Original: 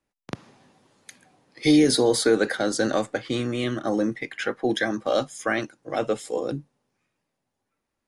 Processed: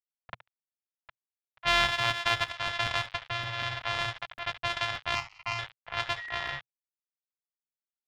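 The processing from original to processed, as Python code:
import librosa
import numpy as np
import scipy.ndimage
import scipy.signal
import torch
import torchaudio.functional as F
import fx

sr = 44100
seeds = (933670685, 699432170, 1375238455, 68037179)

p1 = np.r_[np.sort(x[:len(x) // 128 * 128].reshape(-1, 128), axis=1).ravel(), x[len(x) // 128 * 128:]]
p2 = p1 + fx.echo_feedback(p1, sr, ms=72, feedback_pct=51, wet_db=-15, dry=0)
p3 = np.where(np.abs(p2) >= 10.0 ** (-33.5 / 20.0), p2, 0.0)
p4 = fx.env_lowpass(p3, sr, base_hz=1600.0, full_db=-17.5)
p5 = fx.fixed_phaser(p4, sr, hz=2400.0, stages=8, at=(5.15, 5.59))
p6 = fx.dmg_tone(p5, sr, hz=1900.0, level_db=-37.0, at=(6.17, 6.58), fade=0.02)
p7 = fx.curve_eq(p6, sr, hz=(120.0, 300.0, 480.0, 810.0, 3400.0, 11000.0), db=(0, -25, -6, 3, 11, -14))
p8 = fx.buffer_crackle(p7, sr, first_s=0.77, period_s=0.19, block=128, kind='repeat')
p9 = fx.upward_expand(p8, sr, threshold_db=-27.0, expansion=1.5, at=(1.88, 2.66))
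y = p9 * 10.0 ** (-8.5 / 20.0)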